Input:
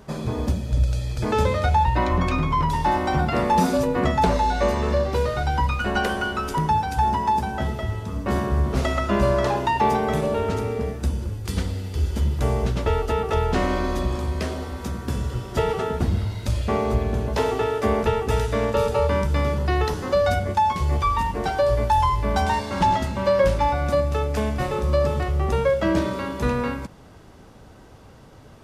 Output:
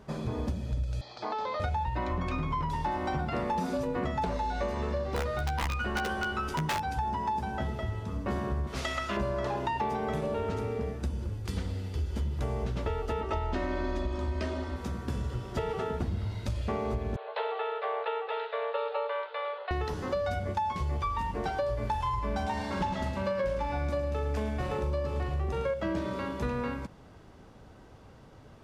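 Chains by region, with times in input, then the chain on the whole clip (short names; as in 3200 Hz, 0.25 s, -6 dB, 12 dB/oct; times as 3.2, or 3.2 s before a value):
1.01–1.6 speaker cabinet 460–5300 Hz, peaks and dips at 490 Hz -5 dB, 760 Hz +9 dB, 1100 Hz +6 dB, 1600 Hz -4 dB, 2600 Hz -5 dB, 4300 Hz +6 dB + compressor, threshold -23 dBFS
5.16–6.92 wrapped overs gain 13.5 dB + doubler 13 ms -6.5 dB
8.67–9.17 tilt shelf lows -8 dB, about 1300 Hz + Doppler distortion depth 0.12 ms
13.21–14.76 Bessel low-pass 6900 Hz + comb 3.2 ms, depth 69%
17.16–19.71 Chebyshev band-pass 470–4100 Hz, order 5 + doubler 13 ms -13 dB
21.74–25.74 doubler 42 ms -7.5 dB + echo 0.108 s -8 dB
whole clip: high shelf 7300 Hz -9 dB; compressor, threshold -22 dBFS; gain -5.5 dB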